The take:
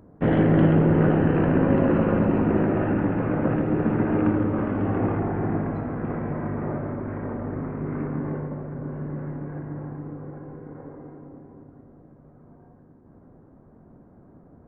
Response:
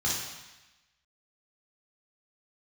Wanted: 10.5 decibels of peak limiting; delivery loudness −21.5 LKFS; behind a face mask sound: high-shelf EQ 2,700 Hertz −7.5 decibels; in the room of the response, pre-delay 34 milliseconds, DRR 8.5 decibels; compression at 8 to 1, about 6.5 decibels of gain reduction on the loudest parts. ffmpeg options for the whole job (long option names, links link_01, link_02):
-filter_complex "[0:a]acompressor=threshold=-21dB:ratio=8,alimiter=limit=-23.5dB:level=0:latency=1,asplit=2[link_01][link_02];[1:a]atrim=start_sample=2205,adelay=34[link_03];[link_02][link_03]afir=irnorm=-1:irlink=0,volume=-17.5dB[link_04];[link_01][link_04]amix=inputs=2:normalize=0,highshelf=frequency=2700:gain=-7.5,volume=10dB"